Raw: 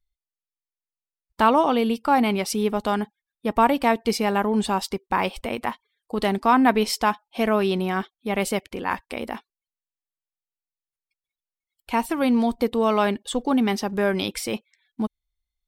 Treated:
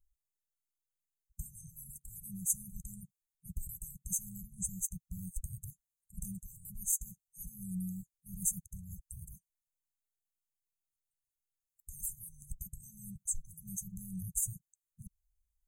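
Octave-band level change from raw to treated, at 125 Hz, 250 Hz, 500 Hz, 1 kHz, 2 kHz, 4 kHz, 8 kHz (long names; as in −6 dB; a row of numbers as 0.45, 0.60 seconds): −10.5 dB, −24.0 dB, below −40 dB, below −40 dB, below −40 dB, below −40 dB, +1.0 dB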